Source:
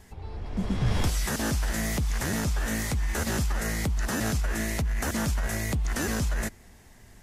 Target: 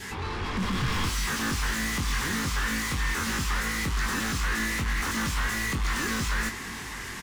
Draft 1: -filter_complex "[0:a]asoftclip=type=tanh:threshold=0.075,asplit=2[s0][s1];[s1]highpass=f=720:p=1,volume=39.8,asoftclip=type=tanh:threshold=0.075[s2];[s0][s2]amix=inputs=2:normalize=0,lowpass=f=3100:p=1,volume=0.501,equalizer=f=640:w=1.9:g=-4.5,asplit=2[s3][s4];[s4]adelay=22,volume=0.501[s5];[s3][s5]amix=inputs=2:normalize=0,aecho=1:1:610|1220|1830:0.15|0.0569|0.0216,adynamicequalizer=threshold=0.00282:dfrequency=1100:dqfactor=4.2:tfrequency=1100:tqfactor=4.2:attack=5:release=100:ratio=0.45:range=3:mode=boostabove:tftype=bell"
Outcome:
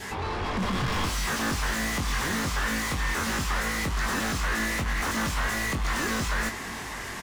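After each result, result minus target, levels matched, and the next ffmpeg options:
saturation: distortion +9 dB; 500 Hz band +4.0 dB
-filter_complex "[0:a]asoftclip=type=tanh:threshold=0.158,asplit=2[s0][s1];[s1]highpass=f=720:p=1,volume=39.8,asoftclip=type=tanh:threshold=0.075[s2];[s0][s2]amix=inputs=2:normalize=0,lowpass=f=3100:p=1,volume=0.501,equalizer=f=640:w=1.9:g=-4.5,asplit=2[s3][s4];[s4]adelay=22,volume=0.501[s5];[s3][s5]amix=inputs=2:normalize=0,aecho=1:1:610|1220|1830:0.15|0.0569|0.0216,adynamicequalizer=threshold=0.00282:dfrequency=1100:dqfactor=4.2:tfrequency=1100:tqfactor=4.2:attack=5:release=100:ratio=0.45:range=3:mode=boostabove:tftype=bell"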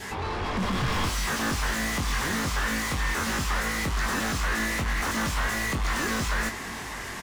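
500 Hz band +4.0 dB
-filter_complex "[0:a]asoftclip=type=tanh:threshold=0.158,asplit=2[s0][s1];[s1]highpass=f=720:p=1,volume=39.8,asoftclip=type=tanh:threshold=0.075[s2];[s0][s2]amix=inputs=2:normalize=0,lowpass=f=3100:p=1,volume=0.501,equalizer=f=640:w=1.9:g=-15,asplit=2[s3][s4];[s4]adelay=22,volume=0.501[s5];[s3][s5]amix=inputs=2:normalize=0,aecho=1:1:610|1220|1830:0.15|0.0569|0.0216,adynamicequalizer=threshold=0.00282:dfrequency=1100:dqfactor=4.2:tfrequency=1100:tqfactor=4.2:attack=5:release=100:ratio=0.45:range=3:mode=boostabove:tftype=bell"

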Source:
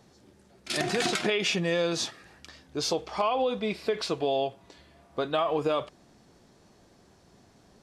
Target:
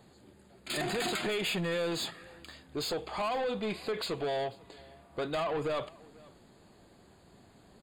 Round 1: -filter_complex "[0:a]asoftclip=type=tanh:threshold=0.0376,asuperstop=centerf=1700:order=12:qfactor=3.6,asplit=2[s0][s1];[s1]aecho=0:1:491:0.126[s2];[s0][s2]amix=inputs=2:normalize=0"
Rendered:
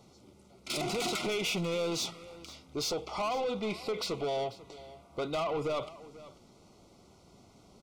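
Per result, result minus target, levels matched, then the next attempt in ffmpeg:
echo-to-direct +6 dB; 8 kHz band +3.5 dB
-filter_complex "[0:a]asoftclip=type=tanh:threshold=0.0376,asuperstop=centerf=1700:order=12:qfactor=3.6,asplit=2[s0][s1];[s1]aecho=0:1:491:0.0631[s2];[s0][s2]amix=inputs=2:normalize=0"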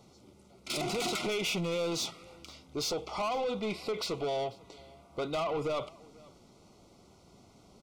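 8 kHz band +3.5 dB
-filter_complex "[0:a]asoftclip=type=tanh:threshold=0.0376,asuperstop=centerf=5700:order=12:qfactor=3.6,asplit=2[s0][s1];[s1]aecho=0:1:491:0.0631[s2];[s0][s2]amix=inputs=2:normalize=0"

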